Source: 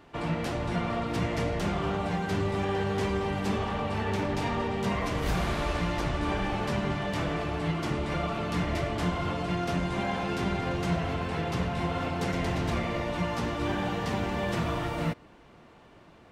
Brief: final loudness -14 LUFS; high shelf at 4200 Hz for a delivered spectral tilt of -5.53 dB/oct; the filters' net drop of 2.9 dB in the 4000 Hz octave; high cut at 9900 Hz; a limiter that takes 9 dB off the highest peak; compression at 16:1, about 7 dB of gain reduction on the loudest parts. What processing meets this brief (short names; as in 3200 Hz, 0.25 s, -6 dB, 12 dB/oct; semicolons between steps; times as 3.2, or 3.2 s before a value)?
LPF 9900 Hz; bell 4000 Hz -6.5 dB; high shelf 4200 Hz +4.5 dB; compressor 16:1, threshold -31 dBFS; gain +25.5 dB; limiter -5.5 dBFS